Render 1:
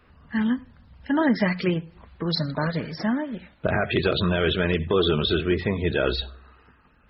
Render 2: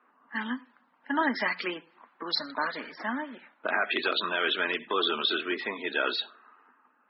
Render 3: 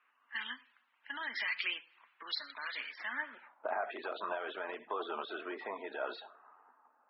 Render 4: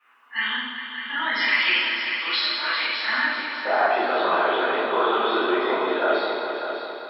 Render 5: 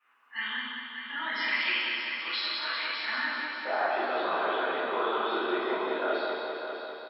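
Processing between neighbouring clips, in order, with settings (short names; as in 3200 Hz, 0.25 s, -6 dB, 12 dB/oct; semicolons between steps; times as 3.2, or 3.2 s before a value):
low-pass opened by the level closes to 1200 Hz, open at -18 dBFS; Chebyshev high-pass 250 Hz, order 4; resonant low shelf 740 Hz -7.5 dB, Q 1.5
limiter -23 dBFS, peak gain reduction 9.5 dB; band-pass sweep 2700 Hz -> 740 Hz, 3.03–3.62; gain +4 dB
multi-head echo 0.198 s, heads all three, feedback 48%, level -11 dB; reverb RT60 1.2 s, pre-delay 5 ms, DRR -12.5 dB
echo 0.185 s -6 dB; gain -8.5 dB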